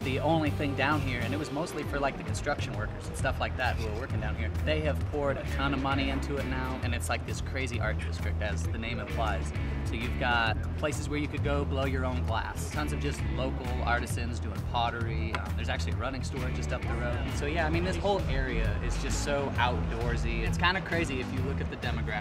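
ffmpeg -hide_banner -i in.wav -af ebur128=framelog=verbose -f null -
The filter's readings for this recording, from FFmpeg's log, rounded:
Integrated loudness:
  I:         -30.9 LUFS
  Threshold: -40.9 LUFS
Loudness range:
  LRA:         2.2 LU
  Threshold: -51.1 LUFS
  LRA low:   -32.2 LUFS
  LRA high:  -29.9 LUFS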